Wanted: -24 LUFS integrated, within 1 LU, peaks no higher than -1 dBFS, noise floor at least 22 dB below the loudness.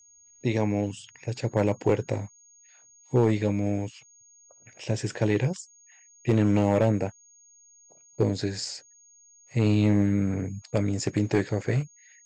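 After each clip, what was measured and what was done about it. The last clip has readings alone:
clipped 0.6%; flat tops at -14.5 dBFS; steady tone 6600 Hz; tone level -54 dBFS; loudness -26.5 LUFS; peak -14.5 dBFS; loudness target -24.0 LUFS
-> clip repair -14.5 dBFS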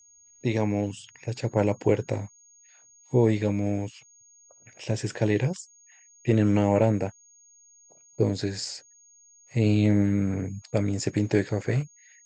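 clipped 0.0%; steady tone 6600 Hz; tone level -54 dBFS
-> notch 6600 Hz, Q 30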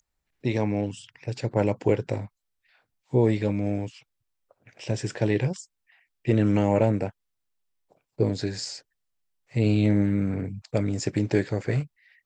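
steady tone none; loudness -26.5 LUFS; peak -9.0 dBFS; loudness target -24.0 LUFS
-> gain +2.5 dB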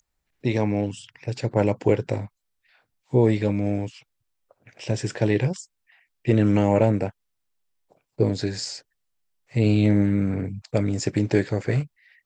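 loudness -24.0 LUFS; peak -6.5 dBFS; noise floor -78 dBFS

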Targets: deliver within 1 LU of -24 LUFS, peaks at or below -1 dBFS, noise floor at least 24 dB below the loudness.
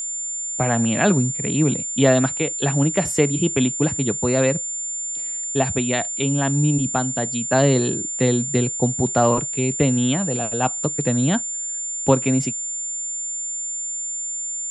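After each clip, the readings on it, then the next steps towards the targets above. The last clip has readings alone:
steady tone 7200 Hz; tone level -25 dBFS; loudness -20.5 LUFS; peak -2.0 dBFS; loudness target -24.0 LUFS
-> notch 7200 Hz, Q 30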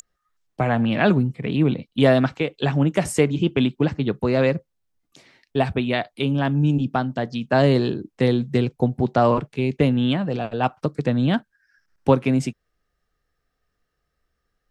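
steady tone none; loudness -21.5 LUFS; peak -3.0 dBFS; loudness target -24.0 LUFS
-> gain -2.5 dB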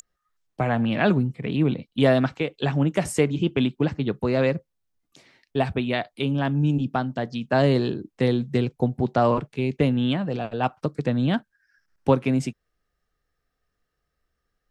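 loudness -24.0 LUFS; peak -5.5 dBFS; noise floor -79 dBFS

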